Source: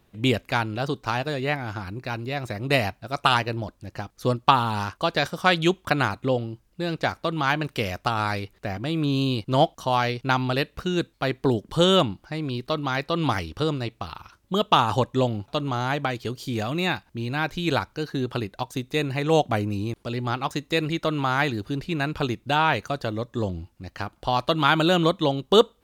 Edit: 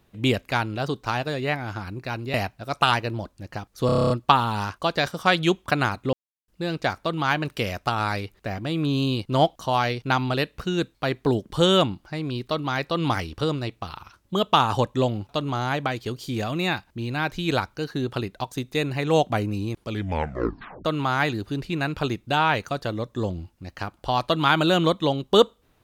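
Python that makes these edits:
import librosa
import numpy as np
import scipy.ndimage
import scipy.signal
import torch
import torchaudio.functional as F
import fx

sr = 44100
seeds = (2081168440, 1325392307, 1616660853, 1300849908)

y = fx.edit(x, sr, fx.cut(start_s=2.34, length_s=0.43),
    fx.stutter(start_s=4.29, slice_s=0.03, count=9),
    fx.silence(start_s=6.32, length_s=0.35),
    fx.tape_stop(start_s=20.03, length_s=1.01), tone=tone)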